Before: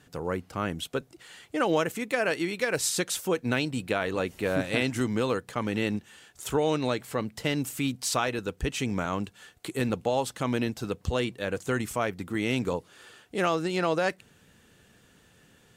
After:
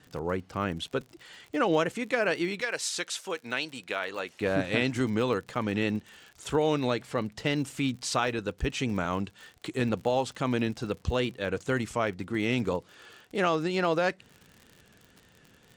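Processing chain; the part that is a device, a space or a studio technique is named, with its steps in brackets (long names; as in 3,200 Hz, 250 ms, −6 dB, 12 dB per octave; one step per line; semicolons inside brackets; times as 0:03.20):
lo-fi chain (low-pass filter 6,400 Hz 12 dB per octave; tape wow and flutter; surface crackle 56 per second −39 dBFS)
0:02.61–0:04.41: high-pass filter 1,000 Hz 6 dB per octave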